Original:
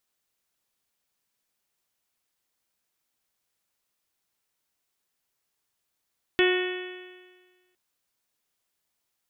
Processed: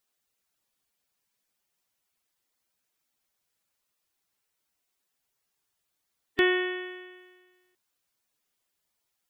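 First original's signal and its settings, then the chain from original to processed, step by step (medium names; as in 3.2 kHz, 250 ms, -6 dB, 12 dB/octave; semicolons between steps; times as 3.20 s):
stretched partials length 1.36 s, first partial 363 Hz, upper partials -14.5/-18/-13/-6/-12.5/-9/-11.5/-12 dB, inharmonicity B 0.00098, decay 1.49 s, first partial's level -18 dB
coarse spectral quantiser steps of 15 dB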